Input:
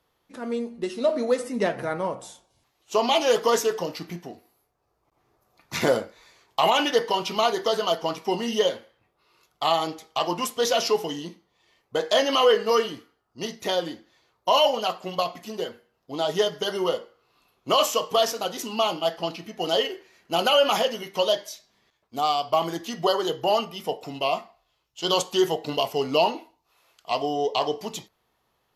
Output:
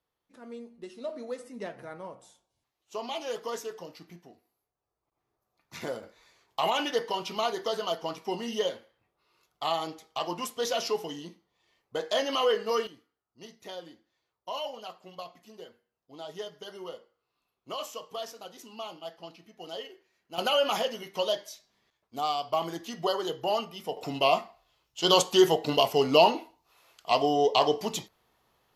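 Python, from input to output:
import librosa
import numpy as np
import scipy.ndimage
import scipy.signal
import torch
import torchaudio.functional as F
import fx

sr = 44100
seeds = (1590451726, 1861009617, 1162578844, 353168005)

y = fx.gain(x, sr, db=fx.steps((0.0, -14.0), (6.03, -7.0), (12.87, -16.0), (20.38, -6.0), (23.97, 1.5)))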